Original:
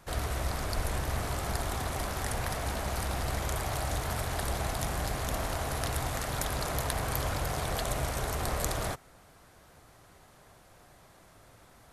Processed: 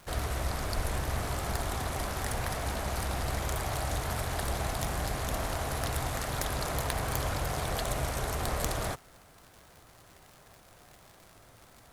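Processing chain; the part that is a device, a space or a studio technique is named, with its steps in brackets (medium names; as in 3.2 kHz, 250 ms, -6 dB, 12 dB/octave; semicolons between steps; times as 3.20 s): record under a worn stylus (tracing distortion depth 0.039 ms; crackle 140 per s -42 dBFS; white noise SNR 38 dB)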